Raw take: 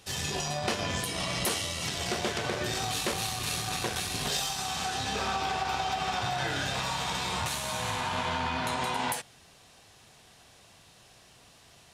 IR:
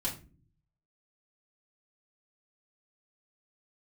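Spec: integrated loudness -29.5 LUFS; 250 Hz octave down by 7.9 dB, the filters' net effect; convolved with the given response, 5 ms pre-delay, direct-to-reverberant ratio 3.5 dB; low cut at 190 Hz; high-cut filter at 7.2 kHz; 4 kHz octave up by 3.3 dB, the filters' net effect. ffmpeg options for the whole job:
-filter_complex "[0:a]highpass=190,lowpass=7200,equalizer=f=250:t=o:g=-9,equalizer=f=4000:t=o:g=4.5,asplit=2[s0][s1];[1:a]atrim=start_sample=2205,adelay=5[s2];[s1][s2]afir=irnorm=-1:irlink=0,volume=0.473[s3];[s0][s3]amix=inputs=2:normalize=0,volume=0.841"

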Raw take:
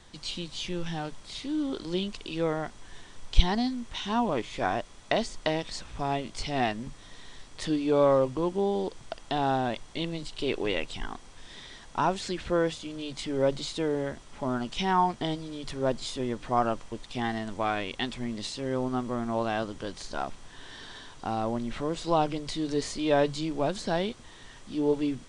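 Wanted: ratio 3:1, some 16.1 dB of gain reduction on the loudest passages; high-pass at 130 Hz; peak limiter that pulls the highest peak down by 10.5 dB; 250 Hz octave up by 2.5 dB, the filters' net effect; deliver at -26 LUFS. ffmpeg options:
-af "highpass=130,equalizer=f=250:t=o:g=3.5,acompressor=threshold=0.00891:ratio=3,volume=7.08,alimiter=limit=0.178:level=0:latency=1"

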